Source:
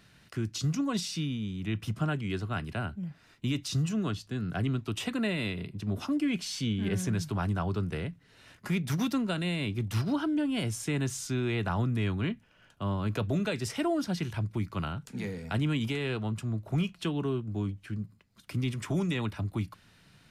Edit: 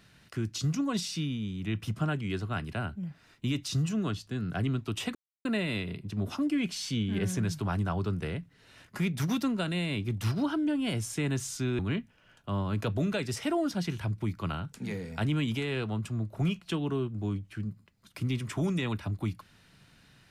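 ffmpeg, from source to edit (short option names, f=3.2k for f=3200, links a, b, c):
-filter_complex "[0:a]asplit=3[a][b][c];[a]atrim=end=5.15,asetpts=PTS-STARTPTS,afade=t=out:st=5.146:d=0.004:c=hsin,apad=pad_dur=0.3[d];[b]atrim=start=5.15:end=11.492,asetpts=PTS-STARTPTS,afade=t=in:d=0.004:c=hsin[e];[c]atrim=start=12.118[f];[d][e]concat=n=2:v=0:a=1[g];[g][f]acrossfade=d=0.004:c1=hsin:c2=hsin"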